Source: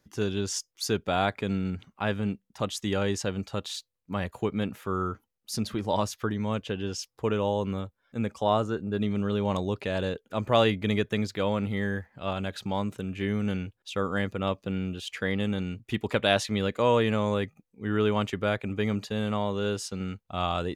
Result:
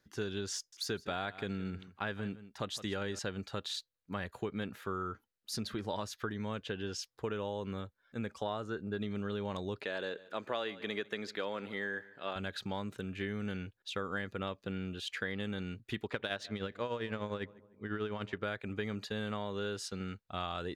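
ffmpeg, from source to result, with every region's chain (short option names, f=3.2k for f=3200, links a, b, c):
-filter_complex "[0:a]asettb=1/sr,asplit=3[a][b][c];[a]atrim=end=0.564[d];[b]atrim=start=0.56:end=3.19,asetpts=PTS-STARTPTS,afade=t=in:d=0.004:c=qsin,afade=t=out:st=2.626:d=0.004:c=qsin,deesser=0.6,aecho=1:1:163:0.133,atrim=end_sample=115983[e];[c]atrim=start=3.186[f];[d][e]acrossfade=d=0.004:c1=hsin:c2=qsin[g];[g][f]acrossfade=d=0.004:c1=qsin:c2=hsin,asettb=1/sr,asplit=3[h][i][j];[h]atrim=end=9.834[k];[i]atrim=start=9.83:end=12.36,asetpts=PTS-STARTPTS,afade=t=in:d=0.004:c=qsin,afade=t=out:st=2.526:d=0.004:c=qsin,highpass=290,highshelf=f=8.3k:g=-6,aecho=1:1:148|296|444:0.0841|0.0328|0.0128,atrim=end_sample=111573[l];[j]atrim=start=12.356[m];[k][l]acrossfade=d=0.004:c1=hsin:c2=qsin[n];[n][m]acrossfade=d=0.004:c1=qsin:c2=hsin,asettb=1/sr,asplit=3[o][p][q];[o]atrim=end=16.044[r];[p]atrim=start=16.04:end=18.43,asetpts=PTS-STARTPTS,afade=t=in:d=0.004:c=qsin,afade=t=out:st=2.386:d=0.004:c=qsin,adynamicsmooth=sensitivity=3.5:basefreq=6.1k,tremolo=f=10:d=0.67,asplit=2[s][t];[t]adelay=151,lowpass=f=1.2k:p=1,volume=-22dB,asplit=2[u][v];[v]adelay=151,lowpass=f=1.2k:p=1,volume=0.52,asplit=2[w][x];[x]adelay=151,lowpass=f=1.2k:p=1,volume=0.52,asplit=2[y][z];[z]adelay=151,lowpass=f=1.2k:p=1,volume=0.52[aa];[s][u][w][y][aa]amix=inputs=5:normalize=0,atrim=end_sample=105399[ab];[q]atrim=start=18.426[ac];[r][ab]acrossfade=d=0.004:c1=hsin:c2=qsin[ad];[ad][ac]acrossfade=d=0.004:c1=qsin:c2=hsin,equalizer=f=400:t=o:w=0.67:g=3,equalizer=f=1.6k:t=o:w=0.67:g=8,equalizer=f=4k:t=o:w=0.67:g=6,acompressor=threshold=-26dB:ratio=6,volume=-7dB"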